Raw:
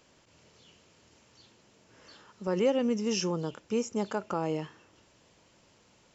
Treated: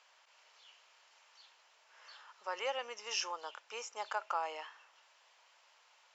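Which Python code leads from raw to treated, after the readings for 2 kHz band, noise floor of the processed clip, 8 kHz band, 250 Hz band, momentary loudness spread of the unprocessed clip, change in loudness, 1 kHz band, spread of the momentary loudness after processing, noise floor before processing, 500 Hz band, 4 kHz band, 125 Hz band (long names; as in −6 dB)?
+0.5 dB, −68 dBFS, can't be measured, −34.5 dB, 9 LU, −9.0 dB, −0.5 dB, 18 LU, −64 dBFS, −13.5 dB, −1.5 dB, below −40 dB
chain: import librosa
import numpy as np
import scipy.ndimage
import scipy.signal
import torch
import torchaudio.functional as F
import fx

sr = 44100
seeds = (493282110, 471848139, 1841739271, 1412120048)

y = scipy.signal.sosfilt(scipy.signal.butter(4, 780.0, 'highpass', fs=sr, output='sos'), x)
y = fx.air_absorb(y, sr, metres=94.0)
y = y * 10.0 ** (1.5 / 20.0)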